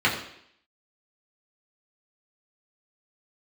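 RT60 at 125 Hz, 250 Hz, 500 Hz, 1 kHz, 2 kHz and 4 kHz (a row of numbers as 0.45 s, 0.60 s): 0.60 s, 0.70 s, 0.70 s, 0.70 s, 0.70 s, 0.75 s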